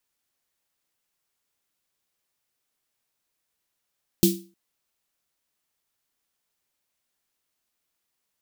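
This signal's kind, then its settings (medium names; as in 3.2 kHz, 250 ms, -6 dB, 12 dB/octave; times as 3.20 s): snare drum length 0.31 s, tones 190 Hz, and 340 Hz, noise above 3.1 kHz, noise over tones -5 dB, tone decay 0.35 s, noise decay 0.30 s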